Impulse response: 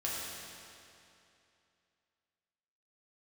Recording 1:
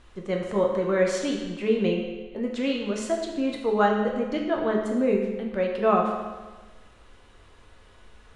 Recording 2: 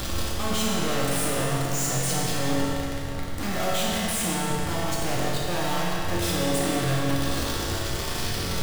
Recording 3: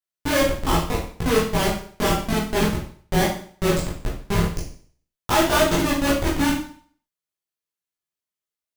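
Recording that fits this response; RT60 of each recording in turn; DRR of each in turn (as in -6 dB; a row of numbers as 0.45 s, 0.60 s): 2; 1.3 s, 2.7 s, 0.50 s; -0.5 dB, -6.5 dB, -6.5 dB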